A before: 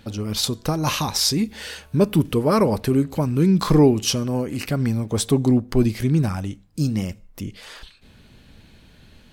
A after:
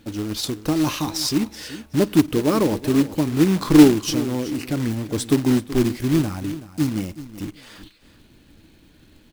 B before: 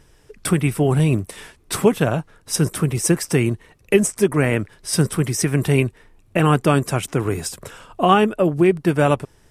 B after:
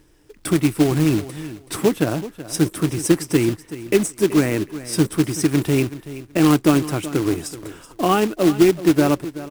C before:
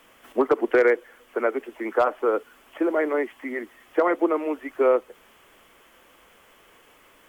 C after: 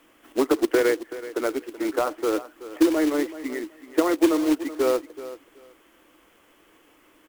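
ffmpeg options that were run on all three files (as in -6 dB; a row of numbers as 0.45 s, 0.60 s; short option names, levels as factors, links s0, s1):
-filter_complex "[0:a]equalizer=f=310:w=4:g=13.5,acrusher=bits=3:mode=log:mix=0:aa=0.000001,asplit=2[s0][s1];[s1]aecho=0:1:378|756:0.178|0.032[s2];[s0][s2]amix=inputs=2:normalize=0,volume=0.596"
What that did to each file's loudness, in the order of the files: +0.5 LU, 0.0 LU, 0.0 LU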